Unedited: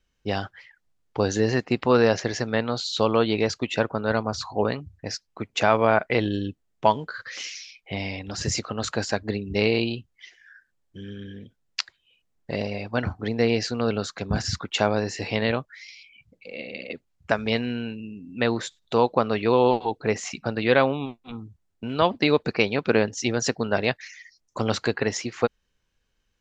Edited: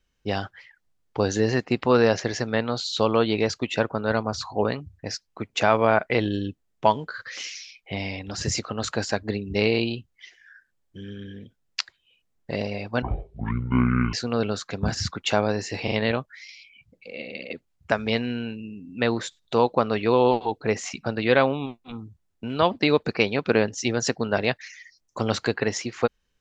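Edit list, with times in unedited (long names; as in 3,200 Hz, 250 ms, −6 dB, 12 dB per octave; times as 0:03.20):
0:13.02–0:13.61: play speed 53%
0:15.31: stutter 0.04 s, 3 plays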